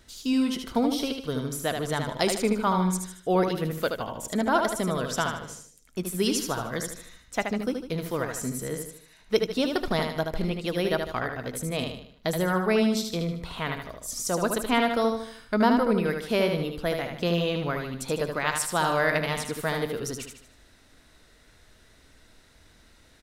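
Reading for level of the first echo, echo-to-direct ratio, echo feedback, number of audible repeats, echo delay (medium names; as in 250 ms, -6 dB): -5.5 dB, -4.5 dB, 43%, 5, 76 ms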